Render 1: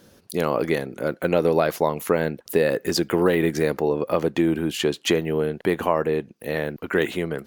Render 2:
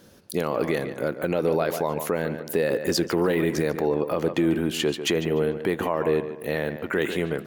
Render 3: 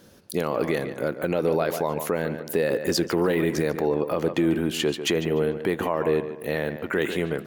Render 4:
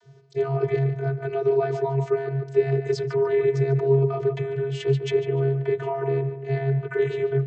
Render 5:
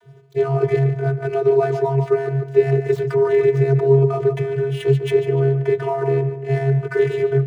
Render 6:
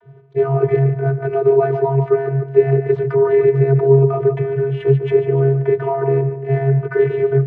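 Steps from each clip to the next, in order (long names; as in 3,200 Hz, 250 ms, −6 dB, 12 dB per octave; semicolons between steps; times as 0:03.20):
on a send: tape delay 146 ms, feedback 40%, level −11 dB, low-pass 3,400 Hz; on the sum: brickwall limiter −13 dBFS, peak gain reduction 7.5 dB
no processing that can be heard
channel vocoder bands 32, square 136 Hz; level +2.5 dB
running median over 9 samples; level +5.5 dB
low-pass filter 1,800 Hz 12 dB per octave; level +2.5 dB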